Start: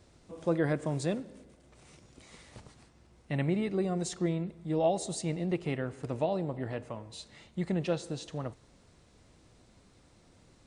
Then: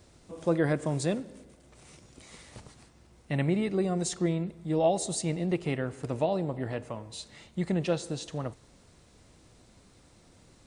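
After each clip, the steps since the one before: high shelf 7900 Hz +6.5 dB; gain +2.5 dB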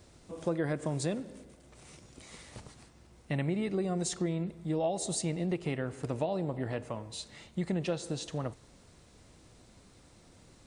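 compressor 3:1, threshold -29 dBFS, peak gain reduction 7.5 dB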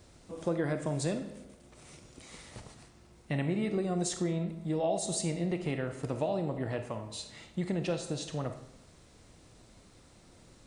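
reverb RT60 0.65 s, pre-delay 4 ms, DRR 7.5 dB

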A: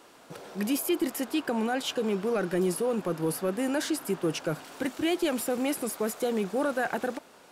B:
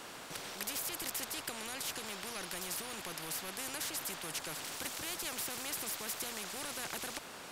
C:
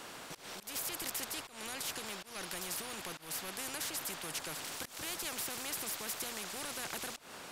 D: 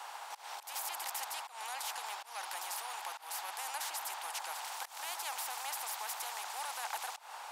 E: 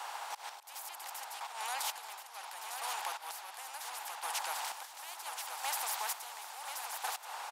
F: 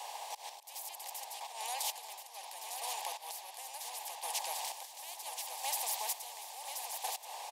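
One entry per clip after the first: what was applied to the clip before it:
spectral compressor 4:1; gain -1.5 dB
auto swell 0.167 s
ladder high-pass 770 Hz, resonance 70%; gain +9.5 dB
chopper 0.71 Hz, depth 65%, duty 35%; echo 1.03 s -7 dB; gain +3.5 dB
fixed phaser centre 570 Hz, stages 4; gain +2 dB

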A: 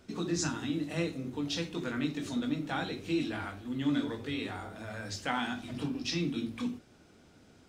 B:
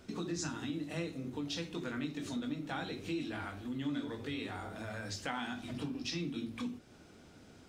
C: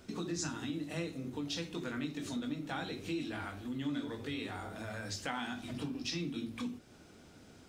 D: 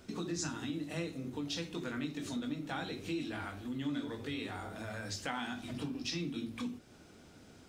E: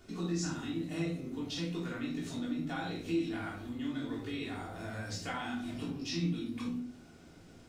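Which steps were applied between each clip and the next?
compressor 2:1, threshold -43 dBFS, peak gain reduction 10 dB; gain +2 dB
high shelf 7000 Hz +4 dB
nothing audible
shoebox room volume 500 m³, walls furnished, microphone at 3.3 m; gain -5 dB

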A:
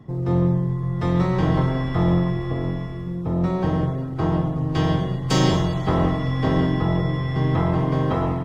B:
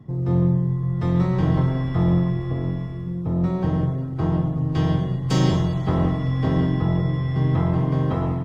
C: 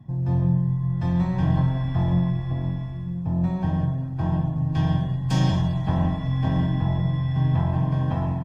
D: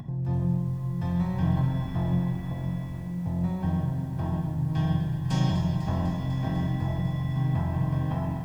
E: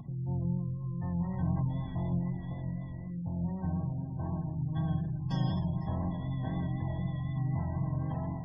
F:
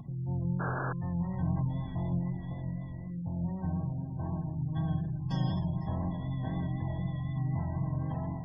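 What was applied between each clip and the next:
bell 120 Hz +6.5 dB 2.5 oct; gain -5 dB
flange 0.41 Hz, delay 7.1 ms, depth 4.6 ms, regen -79%; comb 1.2 ms, depth 69%
upward compressor, threshold -25 dBFS; lo-fi delay 0.249 s, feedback 80%, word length 8-bit, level -11 dB; gain -4.5 dB
spectral gate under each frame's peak -30 dB strong; vibrato 4 Hz 30 cents; gain -6 dB
painted sound noise, 0.59–0.93, 240–1700 Hz -36 dBFS

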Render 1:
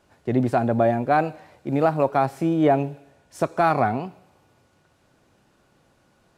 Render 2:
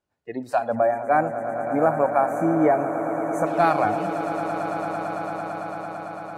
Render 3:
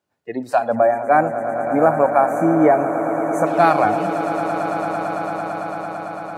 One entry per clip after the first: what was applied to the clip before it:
spectral noise reduction 22 dB; swelling echo 0.112 s, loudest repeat 8, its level -14 dB; spectral gain 0.75–3.47, 2400–5900 Hz -21 dB
HPF 110 Hz; gain +5 dB

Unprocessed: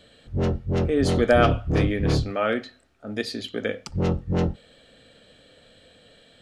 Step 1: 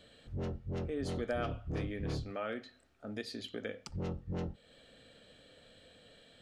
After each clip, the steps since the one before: compressor 2:1, threshold -36 dBFS, peak gain reduction 13 dB; gain -6 dB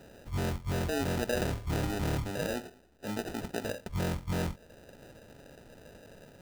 in parallel at -0.5 dB: limiter -33.5 dBFS, peak gain reduction 10 dB; on the sum: sample-rate reducer 1100 Hz, jitter 0%; gain +1.5 dB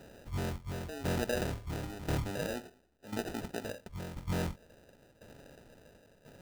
tremolo saw down 0.96 Hz, depth 80%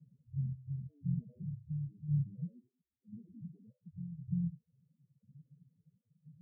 loudest bins only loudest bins 4; Butterworth band-pass 150 Hz, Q 3.4; gain +9 dB

